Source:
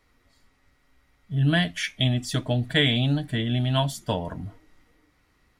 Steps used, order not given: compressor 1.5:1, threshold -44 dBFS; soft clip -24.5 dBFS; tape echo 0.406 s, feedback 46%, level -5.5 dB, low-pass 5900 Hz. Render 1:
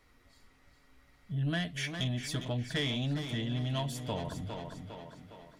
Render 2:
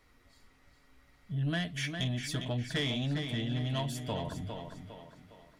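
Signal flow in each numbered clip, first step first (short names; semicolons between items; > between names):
tape echo > compressor > soft clip; compressor > tape echo > soft clip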